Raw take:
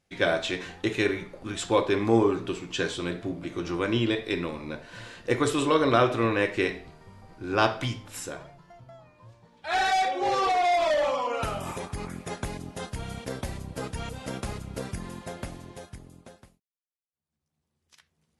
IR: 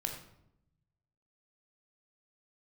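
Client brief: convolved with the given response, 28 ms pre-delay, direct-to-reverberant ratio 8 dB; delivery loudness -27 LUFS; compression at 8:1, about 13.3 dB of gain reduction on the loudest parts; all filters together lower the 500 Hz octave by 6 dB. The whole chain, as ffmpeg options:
-filter_complex "[0:a]equalizer=f=500:t=o:g=-8,acompressor=threshold=-33dB:ratio=8,asplit=2[a][b];[1:a]atrim=start_sample=2205,adelay=28[c];[b][c]afir=irnorm=-1:irlink=0,volume=-9.5dB[d];[a][d]amix=inputs=2:normalize=0,volume=10.5dB"

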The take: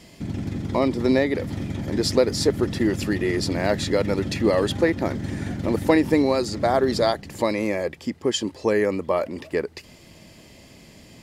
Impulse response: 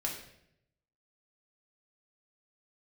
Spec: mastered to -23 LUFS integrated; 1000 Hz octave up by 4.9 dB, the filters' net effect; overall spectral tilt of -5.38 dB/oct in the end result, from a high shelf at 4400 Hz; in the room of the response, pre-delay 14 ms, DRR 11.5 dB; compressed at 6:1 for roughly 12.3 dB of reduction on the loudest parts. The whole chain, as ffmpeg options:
-filter_complex "[0:a]equalizer=f=1k:t=o:g=7,highshelf=f=4.4k:g=-6,acompressor=threshold=-25dB:ratio=6,asplit=2[a][b];[1:a]atrim=start_sample=2205,adelay=14[c];[b][c]afir=irnorm=-1:irlink=0,volume=-14.5dB[d];[a][d]amix=inputs=2:normalize=0,volume=7dB"

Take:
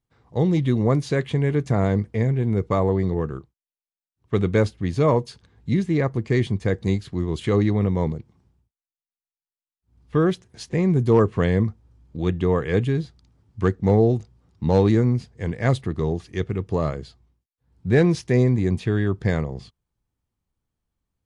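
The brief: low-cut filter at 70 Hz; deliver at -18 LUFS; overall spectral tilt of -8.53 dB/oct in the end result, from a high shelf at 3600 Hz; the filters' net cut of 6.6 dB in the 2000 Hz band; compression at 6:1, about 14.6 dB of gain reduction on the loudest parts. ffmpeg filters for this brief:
-af "highpass=70,equalizer=f=2k:t=o:g=-6.5,highshelf=f=3.6k:g=-6.5,acompressor=threshold=-29dB:ratio=6,volume=16.5dB"

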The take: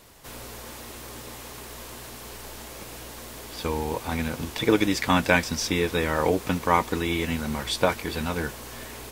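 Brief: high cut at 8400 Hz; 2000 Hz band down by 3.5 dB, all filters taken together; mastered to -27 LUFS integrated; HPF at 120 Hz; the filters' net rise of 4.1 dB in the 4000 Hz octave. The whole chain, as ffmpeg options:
-af "highpass=120,lowpass=8.4k,equalizer=f=2k:t=o:g=-6.5,equalizer=f=4k:t=o:g=7,volume=-1dB"

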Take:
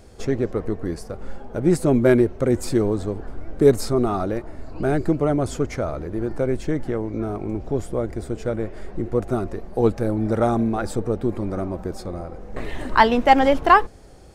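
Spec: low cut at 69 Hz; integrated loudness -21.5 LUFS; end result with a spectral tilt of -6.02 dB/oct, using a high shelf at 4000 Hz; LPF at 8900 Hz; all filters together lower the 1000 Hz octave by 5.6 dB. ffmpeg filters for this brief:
-af "highpass=69,lowpass=8.9k,equalizer=f=1k:t=o:g=-7.5,highshelf=f=4k:g=3,volume=2dB"

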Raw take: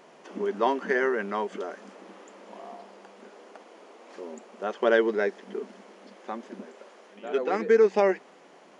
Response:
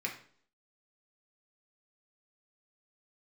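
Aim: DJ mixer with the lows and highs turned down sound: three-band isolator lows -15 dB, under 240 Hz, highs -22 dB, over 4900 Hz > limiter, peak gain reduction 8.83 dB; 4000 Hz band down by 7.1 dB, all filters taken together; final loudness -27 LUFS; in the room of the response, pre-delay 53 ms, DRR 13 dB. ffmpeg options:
-filter_complex "[0:a]equalizer=f=4k:t=o:g=-8,asplit=2[a][b];[1:a]atrim=start_sample=2205,adelay=53[c];[b][c]afir=irnorm=-1:irlink=0,volume=-16.5dB[d];[a][d]amix=inputs=2:normalize=0,acrossover=split=240 4900:gain=0.178 1 0.0794[e][f][g];[e][f][g]amix=inputs=3:normalize=0,volume=4.5dB,alimiter=limit=-14.5dB:level=0:latency=1"

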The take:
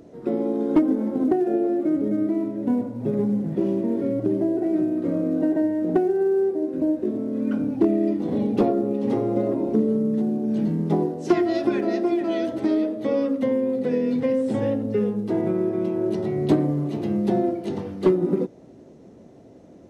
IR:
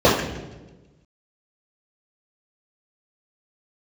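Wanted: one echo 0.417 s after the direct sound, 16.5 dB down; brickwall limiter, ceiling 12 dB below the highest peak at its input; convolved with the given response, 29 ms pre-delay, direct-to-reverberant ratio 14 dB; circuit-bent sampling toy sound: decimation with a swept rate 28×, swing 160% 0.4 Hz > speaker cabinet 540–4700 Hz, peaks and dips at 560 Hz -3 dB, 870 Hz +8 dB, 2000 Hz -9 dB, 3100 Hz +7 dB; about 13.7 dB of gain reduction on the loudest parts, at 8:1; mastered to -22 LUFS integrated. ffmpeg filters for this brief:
-filter_complex "[0:a]acompressor=threshold=-28dB:ratio=8,alimiter=level_in=5dB:limit=-24dB:level=0:latency=1,volume=-5dB,aecho=1:1:417:0.15,asplit=2[a][b];[1:a]atrim=start_sample=2205,adelay=29[c];[b][c]afir=irnorm=-1:irlink=0,volume=-40dB[d];[a][d]amix=inputs=2:normalize=0,acrusher=samples=28:mix=1:aa=0.000001:lfo=1:lforange=44.8:lforate=0.4,highpass=540,equalizer=f=560:t=q:w=4:g=-3,equalizer=f=870:t=q:w=4:g=8,equalizer=f=2k:t=q:w=4:g=-9,equalizer=f=3.1k:t=q:w=4:g=7,lowpass=f=4.7k:w=0.5412,lowpass=f=4.7k:w=1.3066,volume=18dB"

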